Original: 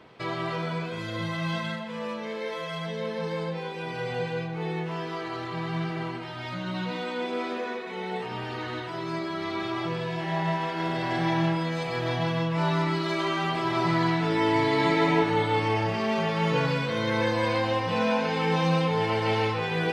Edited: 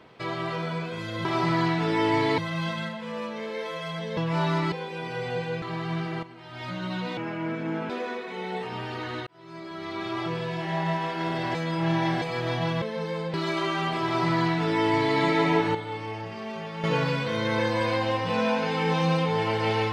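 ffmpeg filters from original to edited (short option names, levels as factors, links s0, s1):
-filter_complex "[0:a]asplit=16[s0][s1][s2][s3][s4][s5][s6][s7][s8][s9][s10][s11][s12][s13][s14][s15];[s0]atrim=end=1.252[s16];[s1]atrim=start=13.668:end=14.802[s17];[s2]atrim=start=1.248:end=3.042[s18];[s3]atrim=start=12.408:end=12.962[s19];[s4]atrim=start=3.558:end=4.462[s20];[s5]atrim=start=5.458:end=6.07,asetpts=PTS-STARTPTS,afade=t=out:st=0.608:d=0.004:c=hsin:silence=0.237137[s21];[s6]atrim=start=6.07:end=7.014,asetpts=PTS-STARTPTS,afade=t=in:d=0.43:c=qua:silence=0.237137[s22];[s7]atrim=start=7.01:end=7.49,asetpts=PTS-STARTPTS,asetrate=29106,aresample=44100[s23];[s8]atrim=start=7.486:end=8.86,asetpts=PTS-STARTPTS,afade=t=out:st=1.37:d=0.004:c=hsin[s24];[s9]atrim=start=8.86:end=11.142,asetpts=PTS-STARTPTS,afade=t=in:d=0.91[s25];[s10]atrim=start=11.138:end=11.812,asetpts=PTS-STARTPTS,areverse[s26];[s11]atrim=start=11.808:end=12.412[s27];[s12]atrim=start=3.038:end=3.562[s28];[s13]atrim=start=12.958:end=15.372[s29];[s14]atrim=start=15.368:end=16.462,asetpts=PTS-STARTPTS,volume=0.355[s30];[s15]atrim=start=16.458[s31];[s16][s17]acrossfade=d=0.004:c1=hsin:c2=hsin[s32];[s32][s18]acrossfade=d=0.004:c1=hsin:c2=hsin[s33];[s33][s19]acrossfade=d=0.004:c1=hsin:c2=hsin[s34];[s34][s20]acrossfade=d=0.004:c1=hsin:c2=hsin[s35];[s21][s22]concat=n=2:v=0:a=1[s36];[s35][s36]acrossfade=d=0.004:c1=hsin:c2=hsin[s37];[s37][s23]acrossfade=d=0.004:c1=hsin:c2=hsin[s38];[s24][s25]concat=n=2:v=0:a=1[s39];[s38][s39]acrossfade=d=0.004:c1=hsin:c2=hsin[s40];[s40][s26]acrossfade=d=0.004:c1=hsin:c2=hsin[s41];[s41][s27]acrossfade=d=0.004:c1=hsin:c2=hsin[s42];[s42][s28]acrossfade=d=0.004:c1=hsin:c2=hsin[s43];[s43][s29]acrossfade=d=0.004:c1=hsin:c2=hsin[s44];[s44][s30]acrossfade=d=0.004:c1=hsin:c2=hsin[s45];[s45][s31]acrossfade=d=0.004:c1=hsin:c2=hsin"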